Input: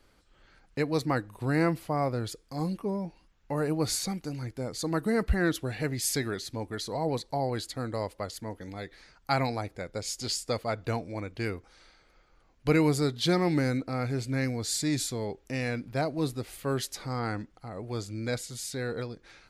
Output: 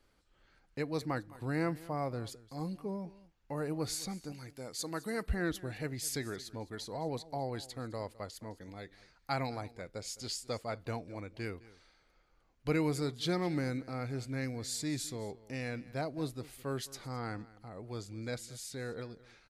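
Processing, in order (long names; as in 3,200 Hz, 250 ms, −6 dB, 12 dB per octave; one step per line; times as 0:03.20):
0:04.32–0:05.26: spectral tilt +2 dB per octave
single-tap delay 211 ms −19.5 dB
level −7.5 dB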